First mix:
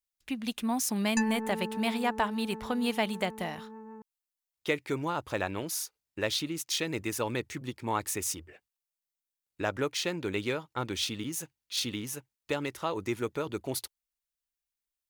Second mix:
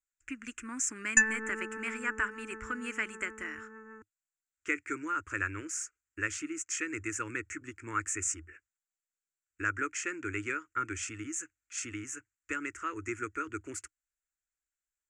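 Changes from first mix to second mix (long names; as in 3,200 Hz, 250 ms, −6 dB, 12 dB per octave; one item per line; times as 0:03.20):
background +8.0 dB
master: add drawn EQ curve 100 Hz 0 dB, 160 Hz −28 dB, 310 Hz −1 dB, 760 Hz −28 dB, 1,400 Hz +8 dB, 2,600 Hz −2 dB, 3,800 Hz −28 dB, 7,400 Hz +8 dB, 12,000 Hz −29 dB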